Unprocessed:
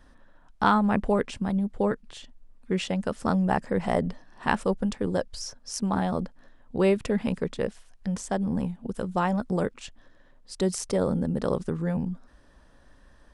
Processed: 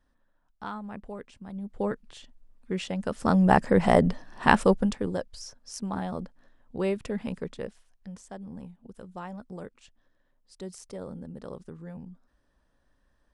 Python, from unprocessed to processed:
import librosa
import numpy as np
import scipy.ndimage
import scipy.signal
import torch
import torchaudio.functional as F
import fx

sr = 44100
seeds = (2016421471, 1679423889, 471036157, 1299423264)

y = fx.gain(x, sr, db=fx.line((1.41, -16.0), (1.82, -4.0), (2.93, -4.0), (3.53, 5.5), (4.66, 5.5), (5.26, -6.0), (7.47, -6.0), (8.23, -14.0)))